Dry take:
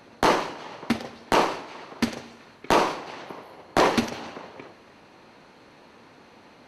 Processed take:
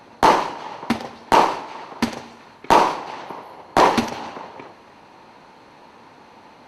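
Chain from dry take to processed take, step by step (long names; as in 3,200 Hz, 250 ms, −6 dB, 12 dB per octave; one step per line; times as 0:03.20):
parametric band 900 Hz +7.5 dB 0.53 octaves
level +2.5 dB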